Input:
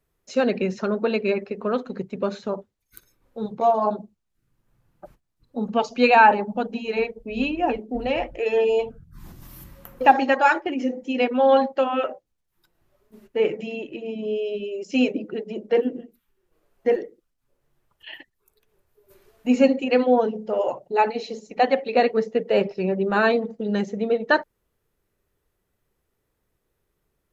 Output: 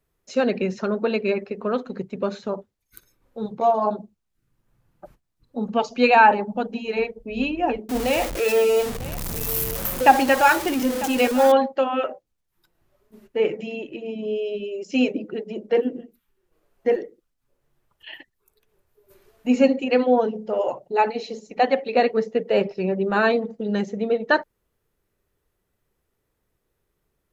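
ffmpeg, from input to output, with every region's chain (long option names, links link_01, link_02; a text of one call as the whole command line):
ffmpeg -i in.wav -filter_complex "[0:a]asettb=1/sr,asplit=3[link_01][link_02][link_03];[link_01]atrim=end=7.894[link_04];[link_02]atrim=start=7.89:end=11.52,asetpts=PTS-STARTPTS,afade=type=in:duration=0.004:curve=qsin,afade=type=out:start_time=3.626:duration=0.004:curve=qsin,aeval=exprs='val(0)+0.5*0.0473*sgn(val(0))':channel_layout=same,highshelf=frequency=5400:gain=10,aecho=1:1:948:0.15,atrim=end_sample=160083[link_05];[link_03]atrim=start=11.516[link_06];[link_04][link_05]acrossfade=duration=0.004:curve1=hsin:curve2=qsin[link_07];[link_07][link_06]acrossfade=duration=0.004:curve1=qsin:curve2=hsin" out.wav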